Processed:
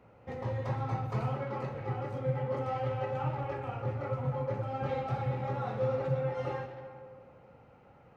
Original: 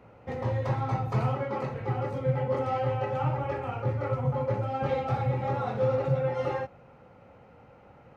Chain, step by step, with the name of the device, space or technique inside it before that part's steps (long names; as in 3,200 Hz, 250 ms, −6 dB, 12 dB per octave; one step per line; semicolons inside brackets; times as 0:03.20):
saturated reverb return (on a send at −6.5 dB: convolution reverb RT60 1.8 s, pre-delay 114 ms + soft clipping −28 dBFS, distortion −10 dB)
on the sum: level −5.5 dB